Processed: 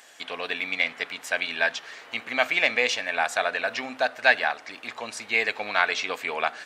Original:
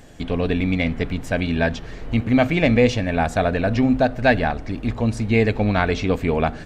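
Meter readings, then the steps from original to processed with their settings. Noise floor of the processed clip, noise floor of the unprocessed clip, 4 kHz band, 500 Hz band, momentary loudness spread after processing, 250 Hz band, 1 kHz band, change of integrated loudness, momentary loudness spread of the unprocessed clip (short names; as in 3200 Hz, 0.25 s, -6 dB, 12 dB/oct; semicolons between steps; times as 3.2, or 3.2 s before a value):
-48 dBFS, -36 dBFS, +3.0 dB, -9.0 dB, 14 LU, -22.5 dB, -3.5 dB, -4.5 dB, 7 LU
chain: HPF 1100 Hz 12 dB/oct; gain +3 dB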